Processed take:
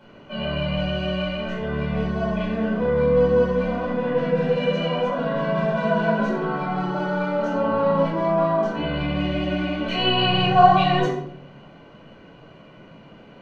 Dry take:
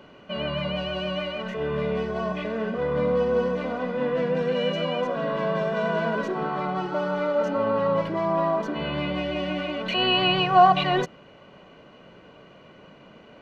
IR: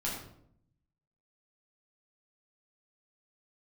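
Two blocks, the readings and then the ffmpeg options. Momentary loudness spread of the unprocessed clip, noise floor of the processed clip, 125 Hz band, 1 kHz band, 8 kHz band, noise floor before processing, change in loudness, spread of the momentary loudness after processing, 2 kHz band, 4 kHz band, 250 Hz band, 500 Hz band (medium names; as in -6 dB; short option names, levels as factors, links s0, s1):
9 LU, -47 dBFS, +6.5 dB, +2.0 dB, no reading, -50 dBFS, +3.0 dB, 8 LU, +2.0 dB, +1.0 dB, +5.0 dB, +3.0 dB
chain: -filter_complex "[1:a]atrim=start_sample=2205[s0];[0:a][s0]afir=irnorm=-1:irlink=0,volume=0.75"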